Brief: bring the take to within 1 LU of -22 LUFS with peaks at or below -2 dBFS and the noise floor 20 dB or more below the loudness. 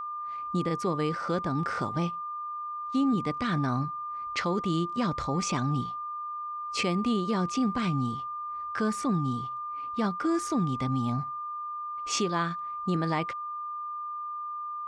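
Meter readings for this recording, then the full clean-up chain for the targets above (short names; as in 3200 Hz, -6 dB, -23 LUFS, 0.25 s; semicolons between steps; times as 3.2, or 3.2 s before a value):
steady tone 1200 Hz; tone level -33 dBFS; loudness -30.5 LUFS; peak -16.5 dBFS; loudness target -22.0 LUFS
-> notch 1200 Hz, Q 30; gain +8.5 dB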